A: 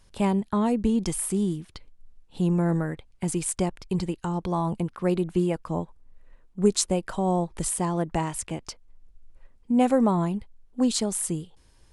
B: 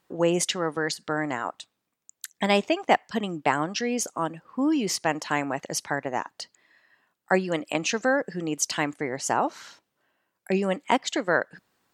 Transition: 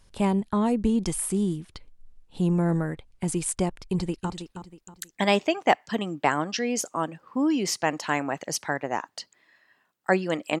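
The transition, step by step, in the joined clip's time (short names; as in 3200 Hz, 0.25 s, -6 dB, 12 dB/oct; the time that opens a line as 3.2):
A
3.68–4.3 echo throw 0.32 s, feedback 35%, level -9.5 dB
4.3 switch to B from 1.52 s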